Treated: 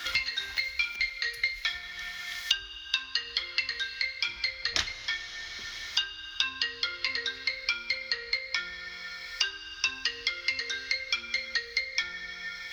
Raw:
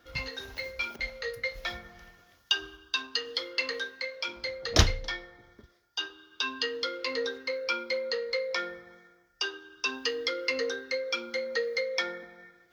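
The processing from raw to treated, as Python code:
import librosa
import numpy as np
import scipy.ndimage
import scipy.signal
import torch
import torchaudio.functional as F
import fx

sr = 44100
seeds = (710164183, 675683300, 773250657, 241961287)

y = fx.graphic_eq(x, sr, hz=(125, 250, 500, 2000, 4000, 8000), db=(-8, -7, -11, 9, 8, 5))
y = fx.rev_plate(y, sr, seeds[0], rt60_s=2.2, hf_ratio=0.95, predelay_ms=0, drr_db=13.0)
y = fx.band_squash(y, sr, depth_pct=100)
y = y * 10.0 ** (-6.5 / 20.0)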